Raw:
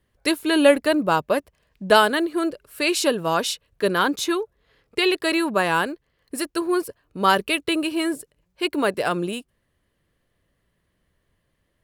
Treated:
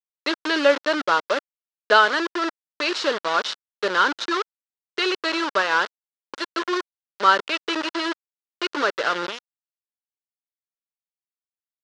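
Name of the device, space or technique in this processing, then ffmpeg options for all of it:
hand-held game console: -af "acrusher=bits=3:mix=0:aa=0.000001,highpass=430,equalizer=frequency=740:width_type=q:width=4:gain=-6,equalizer=frequency=1400:width_type=q:width=4:gain=6,equalizer=frequency=2400:width_type=q:width=4:gain=-5,lowpass=frequency=5000:width=0.5412,lowpass=frequency=5000:width=1.3066"

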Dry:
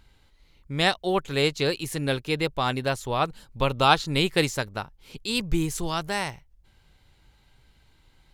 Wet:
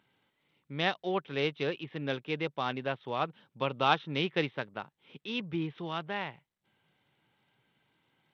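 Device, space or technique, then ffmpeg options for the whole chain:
Bluetooth headset: -af "highpass=frequency=140:width=0.5412,highpass=frequency=140:width=1.3066,aresample=8000,aresample=44100,volume=-7dB" -ar 32000 -c:a sbc -b:a 64k

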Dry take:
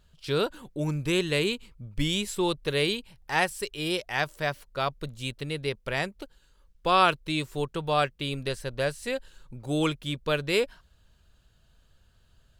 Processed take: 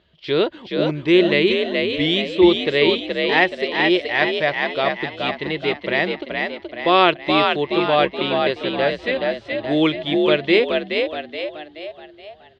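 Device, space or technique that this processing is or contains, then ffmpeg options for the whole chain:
frequency-shifting delay pedal into a guitar cabinet: -filter_complex "[0:a]asplit=7[link_01][link_02][link_03][link_04][link_05][link_06][link_07];[link_02]adelay=425,afreqshift=51,volume=-4dB[link_08];[link_03]adelay=850,afreqshift=102,volume=-10.7dB[link_09];[link_04]adelay=1275,afreqshift=153,volume=-17.5dB[link_10];[link_05]adelay=1700,afreqshift=204,volume=-24.2dB[link_11];[link_06]adelay=2125,afreqshift=255,volume=-31dB[link_12];[link_07]adelay=2550,afreqshift=306,volume=-37.7dB[link_13];[link_01][link_08][link_09][link_10][link_11][link_12][link_13]amix=inputs=7:normalize=0,highpass=100,equalizer=frequency=130:width_type=q:width=4:gain=-7,equalizer=frequency=350:width_type=q:width=4:gain=10,equalizer=frequency=640:width_type=q:width=4:gain=6,equalizer=frequency=1400:width_type=q:width=4:gain=-4,equalizer=frequency=2000:width_type=q:width=4:gain=9,equalizer=frequency=3300:width_type=q:width=4:gain=5,lowpass=frequency=4200:width=0.5412,lowpass=frequency=4200:width=1.3066,asettb=1/sr,asplit=3[link_14][link_15][link_16];[link_14]atrim=end=7.164[link_17];[link_15]atrim=start=7.16:end=7.61,asetpts=PTS-STARTPTS,afade=type=in:duration=0.004:curve=qsin,afade=type=out:start_time=0.446:duration=0.004:curve=qsin,highshelf=frequency=9100:gain=11[link_18];[link_16]atrim=start=7.606[link_19];[link_17][link_18]acrossfade=duration=0.004:curve1=hsin:curve2=qsin[link_20];[link_20][link_19]acrossfade=duration=0.004:curve1=qsin:curve2=hsin,volume=4.5dB"

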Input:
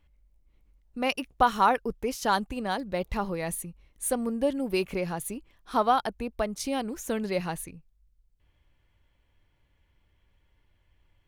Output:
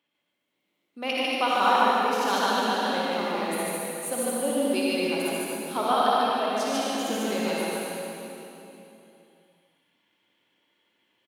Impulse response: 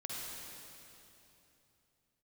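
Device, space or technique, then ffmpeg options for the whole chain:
stadium PA: -filter_complex "[0:a]highpass=frequency=220:width=0.5412,highpass=frequency=220:width=1.3066,equalizer=frequency=3300:width_type=o:width=0.76:gain=6.5,aecho=1:1:148.7|224.5:0.891|0.251[link_01];[1:a]atrim=start_sample=2205[link_02];[link_01][link_02]afir=irnorm=-1:irlink=0"

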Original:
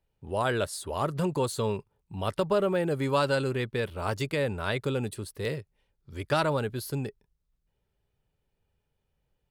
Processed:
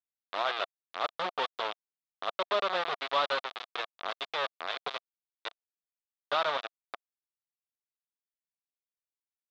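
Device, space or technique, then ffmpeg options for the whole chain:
hand-held game console: -af "acrusher=bits=3:mix=0:aa=0.000001,highpass=470,equalizer=frequency=690:width_type=q:width=4:gain=7,equalizer=frequency=1200:width_type=q:width=4:gain=8,equalizer=frequency=3600:width_type=q:width=4:gain=8,lowpass=frequency=4100:width=0.5412,lowpass=frequency=4100:width=1.3066,volume=-7dB"

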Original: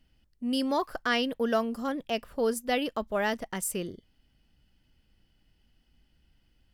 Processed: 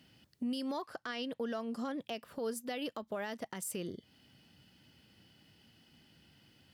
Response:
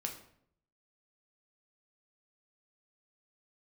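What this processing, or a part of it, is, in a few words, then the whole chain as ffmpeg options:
broadcast voice chain: -filter_complex "[0:a]asettb=1/sr,asplit=3[link_01][link_02][link_03];[link_01]atrim=end=0.824[link_04];[link_02]atrim=start=0.82:end=2.01,asetpts=PTS-STARTPTS,afade=type=in:duration=0.004:curve=qsin,afade=type=out:start_time=1.186:duration=0.004:curve=qsin,lowpass=9900[link_05];[link_03]atrim=start=2.006[link_06];[link_04][link_05]acrossfade=duration=0.004:curve1=hsin:curve2=qsin[link_07];[link_07][link_06]acrossfade=duration=0.004:curve1=qsin:curve2=hsin,highpass=frequency=100:width=0.5412,highpass=frequency=100:width=1.3066,deesser=0.5,acompressor=threshold=-47dB:ratio=3,equalizer=frequency=4100:width_type=o:width=0.73:gain=3,alimiter=level_in=13.5dB:limit=-24dB:level=0:latency=1:release=123,volume=-13.5dB,volume=8.5dB"

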